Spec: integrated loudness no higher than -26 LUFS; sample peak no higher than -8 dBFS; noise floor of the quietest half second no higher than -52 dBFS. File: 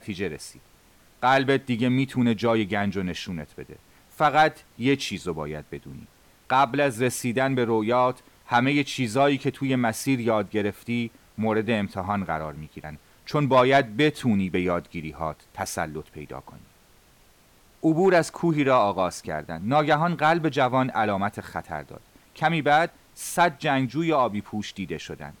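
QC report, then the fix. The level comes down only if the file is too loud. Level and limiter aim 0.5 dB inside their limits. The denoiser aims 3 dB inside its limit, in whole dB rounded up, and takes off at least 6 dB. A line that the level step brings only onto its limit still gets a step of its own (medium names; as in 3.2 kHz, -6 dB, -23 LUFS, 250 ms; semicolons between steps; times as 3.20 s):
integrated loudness -24.0 LUFS: fail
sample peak -9.5 dBFS: pass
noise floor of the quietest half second -57 dBFS: pass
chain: trim -2.5 dB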